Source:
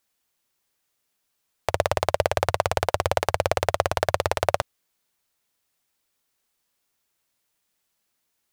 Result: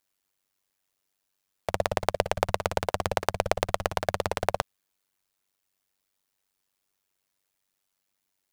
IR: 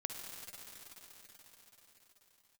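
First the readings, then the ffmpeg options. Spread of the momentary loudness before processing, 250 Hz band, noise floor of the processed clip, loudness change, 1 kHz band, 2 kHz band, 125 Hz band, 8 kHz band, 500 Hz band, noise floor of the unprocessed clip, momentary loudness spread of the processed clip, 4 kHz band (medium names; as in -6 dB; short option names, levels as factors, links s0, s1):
5 LU, 0.0 dB, -80 dBFS, -4.5 dB, -4.0 dB, -4.0 dB, -5.0 dB, -4.0 dB, -4.5 dB, -76 dBFS, 5 LU, -4.0 dB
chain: -af "tremolo=f=96:d=0.947"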